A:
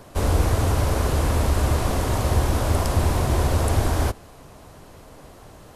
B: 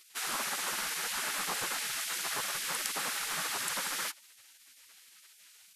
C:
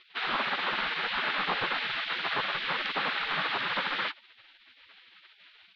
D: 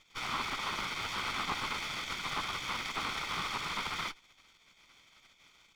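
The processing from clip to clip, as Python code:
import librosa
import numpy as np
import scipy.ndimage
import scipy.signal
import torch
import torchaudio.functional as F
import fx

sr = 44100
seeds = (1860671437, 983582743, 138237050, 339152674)

y1 = fx.spec_gate(x, sr, threshold_db=-25, keep='weak')
y2 = scipy.signal.sosfilt(scipy.signal.butter(8, 3900.0, 'lowpass', fs=sr, output='sos'), y1)
y2 = F.gain(torch.from_numpy(y2), 7.0).numpy()
y3 = fx.lower_of_two(y2, sr, delay_ms=0.88)
y3 = F.gain(torch.from_numpy(y3), -4.0).numpy()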